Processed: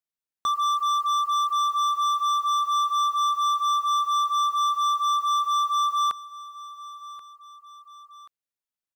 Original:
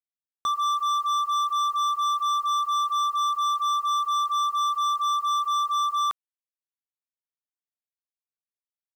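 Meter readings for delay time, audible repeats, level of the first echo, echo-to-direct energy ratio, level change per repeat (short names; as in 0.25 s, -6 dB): 1.082 s, 2, -17.5 dB, -16.5 dB, -6.0 dB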